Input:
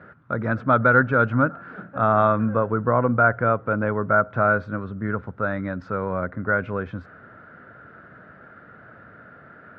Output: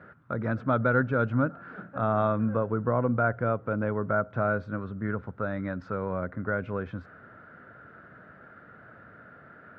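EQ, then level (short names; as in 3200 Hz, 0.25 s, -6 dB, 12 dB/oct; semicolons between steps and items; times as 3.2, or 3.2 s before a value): dynamic EQ 1400 Hz, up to -6 dB, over -30 dBFS, Q 0.72; -4.0 dB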